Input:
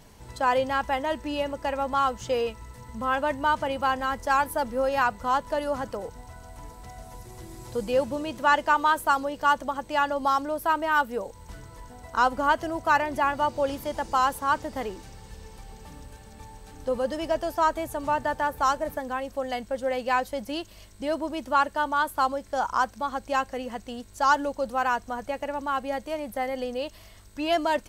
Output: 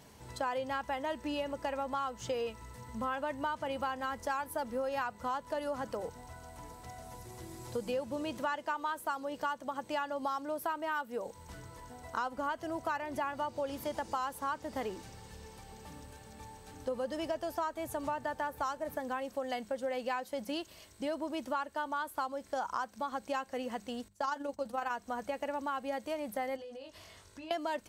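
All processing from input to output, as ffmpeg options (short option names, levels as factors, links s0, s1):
-filter_complex "[0:a]asettb=1/sr,asplit=3[s0][s1][s2];[s0]atrim=end=24.084[s3];[s1]atrim=start=24.08:end=24.91,asetpts=PTS-STARTPTS,afade=t=in:d=0.004:c=qsin,afade=t=out:st=0.826:d=0.004:c=qsin,agate=range=0.141:threshold=0.01:ratio=16:release=100:detection=peak,asplit=2[s4][s5];[s5]adelay=14,volume=0.224[s6];[s4][s6]amix=inputs=2:normalize=0,atrim=end_sample=36603,tremolo=f=24:d=0.519[s7];[s2]atrim=start=24.906[s8];[s3][s7]acrossfade=d=0.004:c1=hsin:c2=qsin[s9];[s9][s8]acrossfade=d=0.004:c1=qsin:c2=hsin,asettb=1/sr,asplit=3[s10][s11][s12];[s10]atrim=end=26.564[s13];[s11]atrim=start=26.56:end=27.51,asetpts=PTS-STARTPTS,afade=t=in:d=0.004:c=qsin,afade=t=out:st=0.946:d=0.004:c=qsin,lowpass=10000,asplit=2[s14][s15];[s15]adelay=22,volume=0.708[s16];[s14][s16]amix=inputs=2:normalize=0,atrim=end_sample=41895,acompressor=threshold=0.00794:ratio=6:attack=3.2:release=140:knee=1:detection=peak[s17];[s12]atrim=start=27.506[s18];[s13][s17]acrossfade=d=0.004:c1=hsin:c2=qsin[s19];[s19][s18]acrossfade=d=0.004:c1=qsin:c2=hsin,bandreject=f=50:t=h:w=6,bandreject=f=100:t=h:w=6,bandreject=f=150:t=h:w=6,bandreject=f=200:t=h:w=6,acompressor=threshold=0.0355:ratio=6,highpass=66,volume=0.708"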